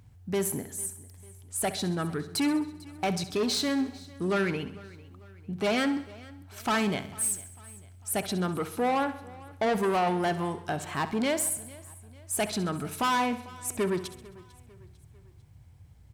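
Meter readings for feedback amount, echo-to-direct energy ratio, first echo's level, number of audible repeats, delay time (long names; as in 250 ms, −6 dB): repeats not evenly spaced, −11.5 dB, −14.0 dB, 8, 66 ms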